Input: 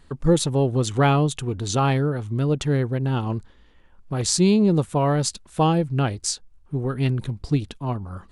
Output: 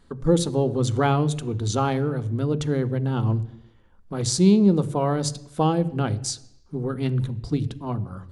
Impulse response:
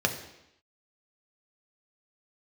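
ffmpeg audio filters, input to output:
-filter_complex "[0:a]asplit=2[link_01][link_02];[1:a]atrim=start_sample=2205,lowshelf=frequency=230:gain=11[link_03];[link_02][link_03]afir=irnorm=-1:irlink=0,volume=-18.5dB[link_04];[link_01][link_04]amix=inputs=2:normalize=0,volume=-4.5dB"

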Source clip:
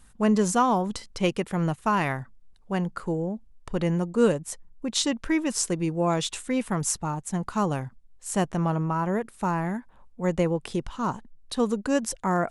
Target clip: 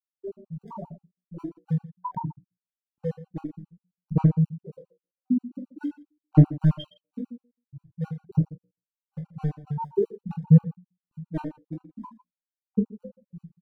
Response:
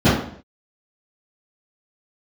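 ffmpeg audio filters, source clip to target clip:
-filter_complex "[0:a]alimiter=limit=-17.5dB:level=0:latency=1:release=311,equalizer=frequency=64:width_type=o:width=0.87:gain=-9.5,asplit=2[link_01][link_02];[link_02]adelay=12,volume=-4dB[link_03];[link_01][link_03]amix=inputs=2:normalize=0,asetrate=40517,aresample=44100,acrossover=split=810[link_04][link_05];[link_04]aeval=exprs='val(0)*(1-1/2+1/2*cos(2*PI*3.6*n/s))':channel_layout=same[link_06];[link_05]aeval=exprs='val(0)*(1-1/2-1/2*cos(2*PI*3.6*n/s))':channel_layout=same[link_07];[link_06][link_07]amix=inputs=2:normalize=0,afftfilt=real='re*gte(hypot(re,im),0.282)':imag='im*gte(hypot(re,im),0.282)':win_size=1024:overlap=0.75,bandreject=frequency=60:width_type=h:width=6,bandreject=frequency=120:width_type=h:width=6,bandreject=frequency=180:width_type=h:width=6,bandreject=frequency=240:width_type=h:width=6,bandreject=frequency=300:width_type=h:width=6,bandreject=frequency=360:width_type=h:width=6,bandreject=frequency=420:width_type=h:width=6,bandreject=frequency=480:width_type=h:width=6,bandreject=frequency=540:width_type=h:width=6,bandreject=frequency=600:width_type=h:width=6,adynamicequalizer=threshold=0.00708:dfrequency=170:dqfactor=2.5:tfrequency=170:tqfactor=2.5:attack=5:release=100:ratio=0.375:range=3:mode=boostabove:tftype=bell,volume=22dB,asoftclip=hard,volume=-22dB,aphaser=in_gain=1:out_gain=1:delay=4:decay=0.72:speed=0.47:type=sinusoidal,asplit=2[link_08][link_09];[link_09]aecho=0:1:20|45|76.25|115.3|164.1:0.631|0.398|0.251|0.158|0.1[link_10];[link_08][link_10]amix=inputs=2:normalize=0,afftfilt=real='re*gt(sin(2*PI*7.5*pts/sr)*(1-2*mod(floor(b*sr/1024/770),2)),0)':imag='im*gt(sin(2*PI*7.5*pts/sr)*(1-2*mod(floor(b*sr/1024/770),2)),0)':win_size=1024:overlap=0.75"

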